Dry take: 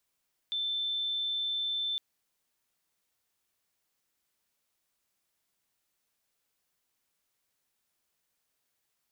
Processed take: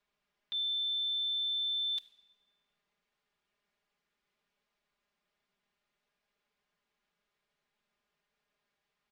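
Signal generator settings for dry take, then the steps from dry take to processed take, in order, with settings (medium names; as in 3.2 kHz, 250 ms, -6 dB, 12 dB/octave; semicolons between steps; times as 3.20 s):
tone sine 3.54 kHz -29.5 dBFS 1.46 s
level-controlled noise filter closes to 3 kHz, open at -33 dBFS; comb 4.9 ms, depth 92%; simulated room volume 1400 m³, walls mixed, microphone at 0.43 m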